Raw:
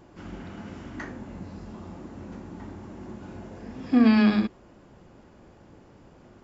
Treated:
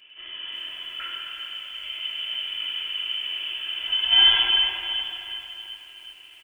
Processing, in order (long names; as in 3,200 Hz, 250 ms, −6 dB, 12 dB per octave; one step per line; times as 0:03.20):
sub-octave generator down 1 octave, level −4 dB
high-pass filter 180 Hz 12 dB per octave
low-shelf EQ 290 Hz −2 dB
0:01.83–0:04.13: compressor whose output falls as the input rises −24 dBFS, ratio −0.5
high-shelf EQ 2,400 Hz −5.5 dB
notch filter 1,000 Hz, Q 20
dense smooth reverb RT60 2.8 s, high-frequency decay 1×, DRR −2.5 dB
voice inversion scrambler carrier 3,300 Hz
comb filter 3 ms, depth 55%
repeating echo 101 ms, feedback 57%, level −8.5 dB
feedback echo at a low word length 369 ms, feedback 55%, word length 8 bits, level −13 dB